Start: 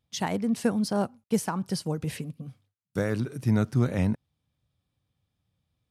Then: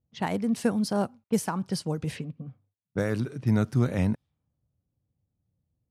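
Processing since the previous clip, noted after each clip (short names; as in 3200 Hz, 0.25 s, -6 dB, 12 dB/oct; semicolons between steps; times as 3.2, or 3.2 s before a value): low-pass opened by the level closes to 550 Hz, open at -25 dBFS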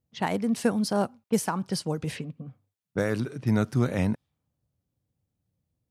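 low shelf 190 Hz -5.5 dB; gain +2.5 dB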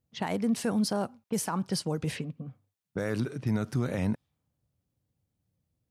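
limiter -20 dBFS, peak gain reduction 8 dB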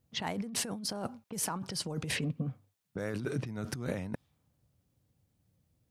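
negative-ratio compressor -36 dBFS, ratio -1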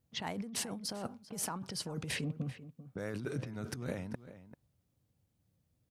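outdoor echo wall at 67 m, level -14 dB; gain -3.5 dB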